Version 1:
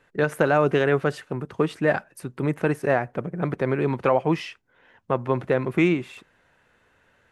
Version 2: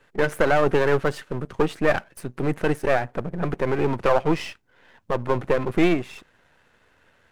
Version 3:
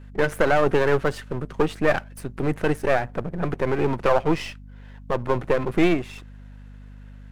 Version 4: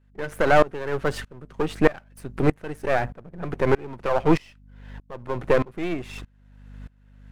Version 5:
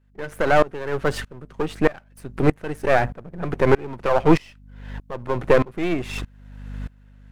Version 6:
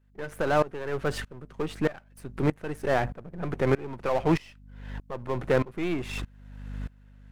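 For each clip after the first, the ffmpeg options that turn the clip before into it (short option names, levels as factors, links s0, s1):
-af "aeval=exprs='if(lt(val(0),0),0.251*val(0),val(0))':c=same,volume=1.78"
-af "aeval=exprs='val(0)+0.00891*(sin(2*PI*50*n/s)+sin(2*PI*2*50*n/s)/2+sin(2*PI*3*50*n/s)/3+sin(2*PI*4*50*n/s)/4+sin(2*PI*5*50*n/s)/5)':c=same"
-af "aeval=exprs='val(0)*pow(10,-25*if(lt(mod(-1.6*n/s,1),2*abs(-1.6)/1000),1-mod(-1.6*n/s,1)/(2*abs(-1.6)/1000),(mod(-1.6*n/s,1)-2*abs(-1.6)/1000)/(1-2*abs(-1.6)/1000))/20)':c=same,volume=2"
-af "dynaudnorm=f=110:g=9:m=3.55,volume=0.891"
-af "aeval=exprs='(tanh(3.55*val(0)+0.65)-tanh(0.65))/3.55':c=same"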